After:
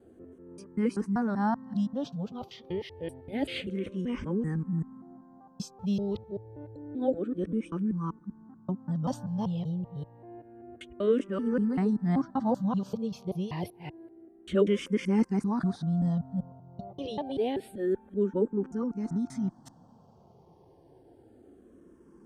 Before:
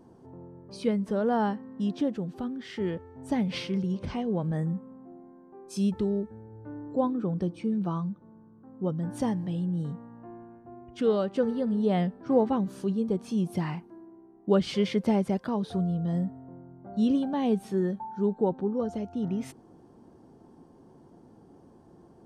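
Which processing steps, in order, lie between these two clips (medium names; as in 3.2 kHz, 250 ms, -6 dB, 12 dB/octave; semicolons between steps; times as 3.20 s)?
time reversed locally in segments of 193 ms; barber-pole phaser -0.28 Hz; trim +1 dB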